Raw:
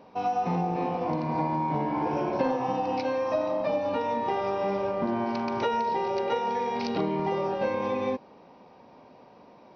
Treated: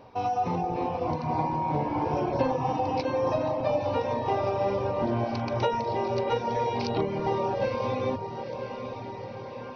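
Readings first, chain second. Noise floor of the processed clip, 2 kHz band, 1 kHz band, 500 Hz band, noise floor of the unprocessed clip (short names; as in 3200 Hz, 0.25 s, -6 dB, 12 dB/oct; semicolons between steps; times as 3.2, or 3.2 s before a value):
-39 dBFS, -1.5 dB, 0.0 dB, +0.5 dB, -53 dBFS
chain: resonant low shelf 140 Hz +6.5 dB, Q 3; on a send: diffused feedback echo 0.957 s, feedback 61%, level -9 dB; on the sum: dynamic EQ 1700 Hz, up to -4 dB, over -44 dBFS, Q 1.4; de-hum 103.9 Hz, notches 33; reverb removal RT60 0.51 s; gain +2.5 dB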